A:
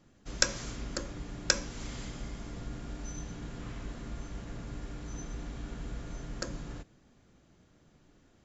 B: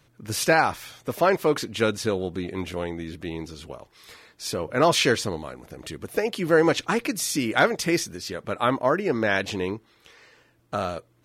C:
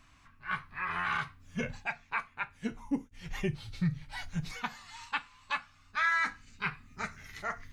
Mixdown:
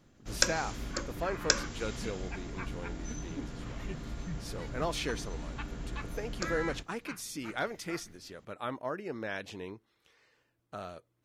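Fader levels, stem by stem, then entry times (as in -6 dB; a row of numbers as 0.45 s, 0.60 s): 0.0 dB, -14.5 dB, -11.0 dB; 0.00 s, 0.00 s, 0.45 s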